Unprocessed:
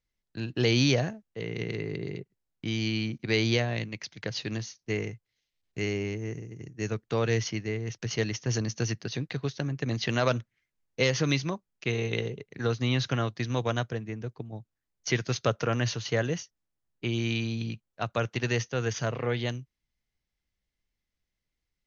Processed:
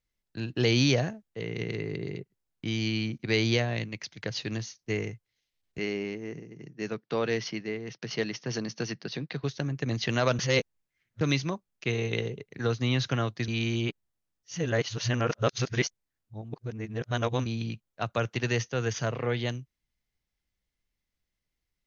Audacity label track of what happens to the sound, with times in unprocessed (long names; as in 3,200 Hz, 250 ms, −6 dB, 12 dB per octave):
5.780000	9.440000	elliptic band-pass filter 150–5,200 Hz
10.390000	11.210000	reverse
13.480000	17.460000	reverse